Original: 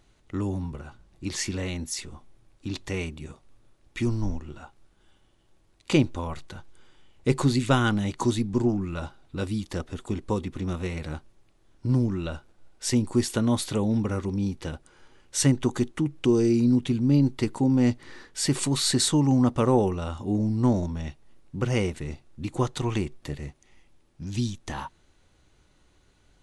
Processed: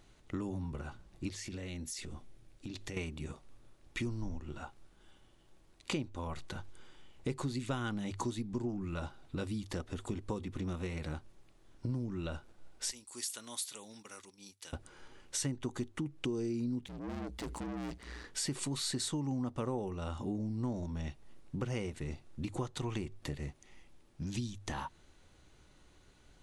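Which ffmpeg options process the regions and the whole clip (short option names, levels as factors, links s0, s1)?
-filter_complex "[0:a]asettb=1/sr,asplit=3[s0][s1][s2];[s0]atrim=end=1.294[s3];[s1]atrim=start=1.29:end=2.97,asetpts=PTS-STARTPTS,afade=t=in:d=0.004:c=qsin,afade=t=out:st=1.676:d=0.004:c=qsin,equalizer=f=1000:t=o:w=0.87:g=-6,acompressor=threshold=0.0126:ratio=10:attack=3.2:release=140:knee=1:detection=peak[s4];[s2]atrim=start=2.966[s5];[s3][s4]acrossfade=d=0.004:c1=hsin:c2=qsin[s6];[s6][s5]acrossfade=d=0.004:c1=qsin:c2=hsin,asettb=1/sr,asplit=3[s7][s8][s9];[s7]atrim=end=12.914[s10];[s8]atrim=start=12.91:end=14.73,asetpts=PTS-STARTPTS,afade=t=in:d=0.004:c=qsin,afade=t=out:st=1.816:d=0.004:c=qsin,aderivative,agate=range=0.355:threshold=0.00158:ratio=16:release=100:detection=peak[s11];[s9]atrim=start=14.726[s12];[s10][s11]acrossfade=d=0.004:c1=hsin:c2=qsin[s13];[s13][s12]acrossfade=d=0.004:c1=qsin:c2=hsin,asettb=1/sr,asplit=3[s14][s15][s16];[s14]atrim=end=16.864[s17];[s15]atrim=start=16.86:end=18.24,asetpts=PTS-STARTPTS,afade=t=in:d=0.004:c=qsin,afade=t=out:st=1.376:d=0.004:c=qsin,highshelf=f=6200:g=3,aeval=exprs='(tanh(50.1*val(0)+0.25)-tanh(0.25))/50.1':c=same,aeval=exprs='val(0)*sin(2*PI*60*n/s)':c=same[s18];[s16]atrim=start=18.236[s19];[s17][s18]acrossfade=d=0.004:c1=hsin:c2=qsin[s20];[s20][s19]acrossfade=d=0.004:c1=qsin:c2=hsin,bandreject=f=50:t=h:w=6,bandreject=f=100:t=h:w=6,acompressor=threshold=0.0158:ratio=4"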